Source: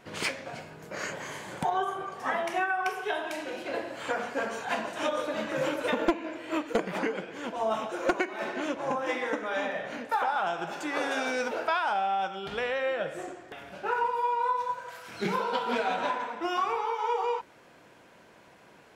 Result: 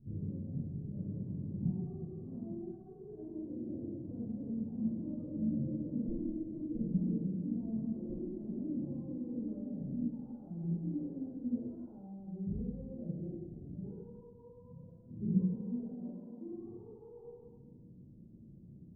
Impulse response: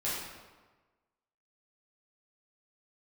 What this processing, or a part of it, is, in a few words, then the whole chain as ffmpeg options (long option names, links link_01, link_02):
club heard from the street: -filter_complex "[0:a]asettb=1/sr,asplit=3[link_01][link_02][link_03];[link_01]atrim=end=15.394[link_04];[link_02]atrim=start=15.39:end=16.52,asetpts=PTS-STARTPTS,afade=type=in:duration=0.004:curve=qsin,afade=type=out:start_time=1.126:duration=0.004:curve=qsin,highpass=270[link_05];[link_03]atrim=start=16.516[link_06];[link_04][link_05]acrossfade=duration=0.004:curve1=hsin:curve2=qsin[link_07];[link_07][link_06]acrossfade=duration=0.004:curve1=qsin:curve2=hsin,alimiter=level_in=2dB:limit=-24dB:level=0:latency=1:release=12,volume=-2dB,lowpass=frequency=210:width=0.5412,lowpass=frequency=210:width=1.3066[link_08];[1:a]atrim=start_sample=2205[link_09];[link_08][link_09]afir=irnorm=-1:irlink=0,volume=6.5dB"